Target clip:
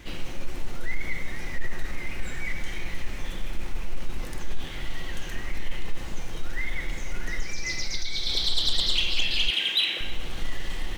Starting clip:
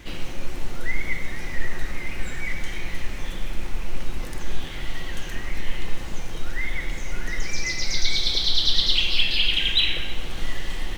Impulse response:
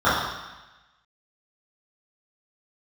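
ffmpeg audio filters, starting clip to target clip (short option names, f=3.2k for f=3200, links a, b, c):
-filter_complex "[0:a]asplit=3[a][b][c];[a]afade=t=out:st=7.42:d=0.02[d];[b]acompressor=threshold=-19dB:ratio=4,afade=t=in:st=7.42:d=0.02,afade=t=out:st=8.28:d=0.02[e];[c]afade=t=in:st=8.28:d=0.02[f];[d][e][f]amix=inputs=3:normalize=0,asettb=1/sr,asplit=3[g][h][i];[g]atrim=end=9.504[j];[h]atrim=start=9.5:end=10.01,asetpts=PTS-STARTPTS,afade=t=in:d=0.004:c=qsin,afade=t=out:st=0.506:d=0.004:c=qsin,highpass=310[k];[i]atrim=start=10.006[l];[j][k]acrossfade=d=0.004:c1=hsin:c2=qsin[m];[m][l]acrossfade=d=0.004:c1=qsin:c2=hsin,asoftclip=type=tanh:threshold=-11dB,volume=-2dB"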